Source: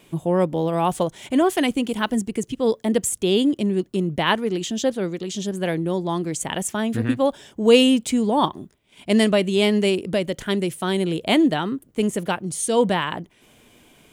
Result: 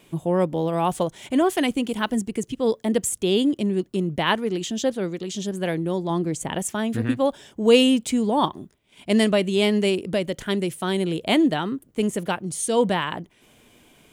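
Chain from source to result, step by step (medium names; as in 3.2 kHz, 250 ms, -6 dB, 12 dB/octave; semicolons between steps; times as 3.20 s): 6.10–6.59 s: tilt shelf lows +3.5 dB; trim -1.5 dB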